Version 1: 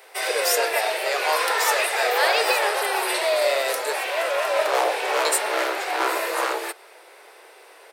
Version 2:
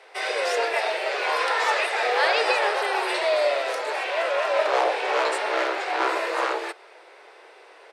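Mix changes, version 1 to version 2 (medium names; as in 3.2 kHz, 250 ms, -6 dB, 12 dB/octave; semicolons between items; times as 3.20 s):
speech -5.5 dB; master: add distance through air 98 m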